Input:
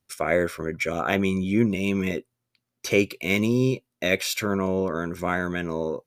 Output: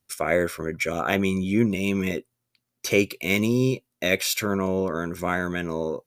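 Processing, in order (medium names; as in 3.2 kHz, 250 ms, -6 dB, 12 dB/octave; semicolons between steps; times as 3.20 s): treble shelf 6.5 kHz +6 dB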